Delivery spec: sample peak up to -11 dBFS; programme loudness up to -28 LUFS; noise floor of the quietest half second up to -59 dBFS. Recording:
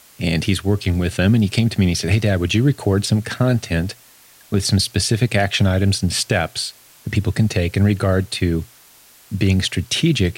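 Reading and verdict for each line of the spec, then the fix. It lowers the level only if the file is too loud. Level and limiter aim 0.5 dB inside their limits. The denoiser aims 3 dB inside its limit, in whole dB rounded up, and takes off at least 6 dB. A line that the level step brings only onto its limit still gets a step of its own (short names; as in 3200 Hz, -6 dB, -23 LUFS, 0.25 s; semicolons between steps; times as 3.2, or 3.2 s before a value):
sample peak -5.5 dBFS: fail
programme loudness -19.0 LUFS: fail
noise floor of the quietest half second -48 dBFS: fail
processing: denoiser 6 dB, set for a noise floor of -48 dBFS; gain -9.5 dB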